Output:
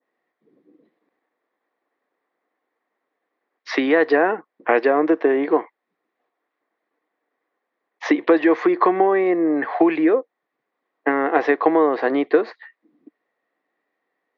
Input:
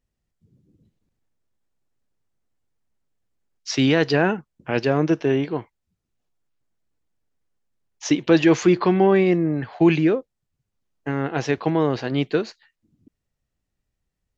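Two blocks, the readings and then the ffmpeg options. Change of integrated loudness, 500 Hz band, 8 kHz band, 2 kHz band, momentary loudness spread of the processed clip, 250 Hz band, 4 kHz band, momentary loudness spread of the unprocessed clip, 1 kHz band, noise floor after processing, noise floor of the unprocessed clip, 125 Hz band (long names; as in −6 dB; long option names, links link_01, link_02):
+1.5 dB, +3.0 dB, can't be measured, +3.5 dB, 7 LU, 0.0 dB, −7.5 dB, 12 LU, +7.0 dB, −80 dBFS, −81 dBFS, below −20 dB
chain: -af "adynamicequalizer=threshold=0.0112:dfrequency=2600:dqfactor=0.89:tfrequency=2600:tqfactor=0.89:attack=5:release=100:ratio=0.375:range=2:mode=cutabove:tftype=bell,acompressor=threshold=-24dB:ratio=6,highpass=frequency=300:width=0.5412,highpass=frequency=300:width=1.3066,equalizer=frequency=300:width_type=q:width=4:gain=5,equalizer=frequency=480:width_type=q:width=4:gain=6,equalizer=frequency=730:width_type=q:width=4:gain=7,equalizer=frequency=1100:width_type=q:width=4:gain=9,equalizer=frequency=1900:width_type=q:width=4:gain=10,equalizer=frequency=2900:width_type=q:width=4:gain=-7,lowpass=frequency=3400:width=0.5412,lowpass=frequency=3400:width=1.3066,volume=8dB"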